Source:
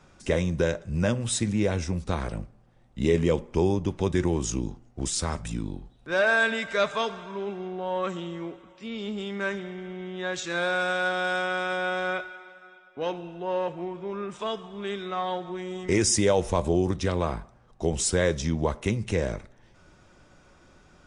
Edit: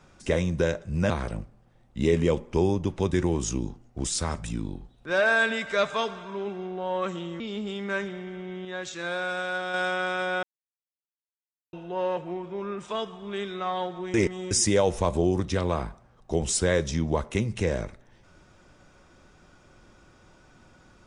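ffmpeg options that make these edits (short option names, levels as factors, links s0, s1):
-filter_complex "[0:a]asplit=9[s0][s1][s2][s3][s4][s5][s6][s7][s8];[s0]atrim=end=1.102[s9];[s1]atrim=start=2.108:end=8.412[s10];[s2]atrim=start=8.908:end=10.162[s11];[s3]atrim=start=10.158:end=11.252,asetpts=PTS-STARTPTS,volume=0.631[s12];[s4]atrim=start=11.248:end=11.94,asetpts=PTS-STARTPTS,afade=t=out:st=0.688:d=0.004:c=hsin[s13];[s5]atrim=start=11.94:end=13.24,asetpts=PTS-STARTPTS,volume=0[s14];[s6]atrim=start=13.24:end=15.652,asetpts=PTS-STARTPTS,afade=t=in:d=0.004:c=hsin[s15];[s7]atrim=start=15.648:end=16.022,asetpts=PTS-STARTPTS,areverse[s16];[s8]atrim=start=16.018[s17];[s9][s10]acrossfade=d=0.004:c1=hsin:c2=hsin[s18];[s18][s11]acrossfade=d=0.004:c1=hsin:c2=hsin[s19];[s19][s12]acrossfade=d=0.004:c1=hsin:c2=hsin[s20];[s13][s14][s15]concat=n=3:v=0:a=1[s21];[s20][s21]acrossfade=d=0.004:c1=hsin:c2=hsin[s22];[s22][s16]acrossfade=d=0.004:c1=hsin:c2=hsin[s23];[s23][s17]acrossfade=d=0.004:c1=hsin:c2=hsin"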